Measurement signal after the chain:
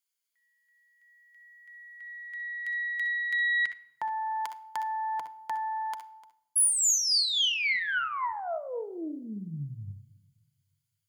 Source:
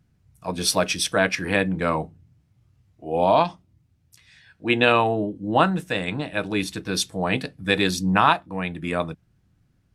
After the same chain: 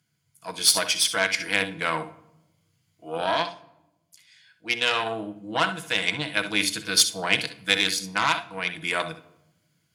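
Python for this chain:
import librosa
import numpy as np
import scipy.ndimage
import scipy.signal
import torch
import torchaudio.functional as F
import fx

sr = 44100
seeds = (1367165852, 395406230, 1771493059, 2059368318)

y = fx.ripple_eq(x, sr, per_octave=1.8, db=7)
y = fx.room_early_taps(y, sr, ms=(62, 72), db=(-12.0, -15.0))
y = fx.cheby_harmonics(y, sr, harmonics=(6,), levels_db=(-20,), full_scale_db=-0.5)
y = fx.rider(y, sr, range_db=4, speed_s=0.5)
y = scipy.signal.sosfilt(scipy.signal.butter(4, 94.0, 'highpass', fs=sr, output='sos'), y)
y = fx.tilt_shelf(y, sr, db=-9.0, hz=1200.0)
y = fx.room_shoebox(y, sr, seeds[0], volume_m3=3500.0, walls='furnished', distance_m=0.68)
y = y * 10.0 ** (-4.5 / 20.0)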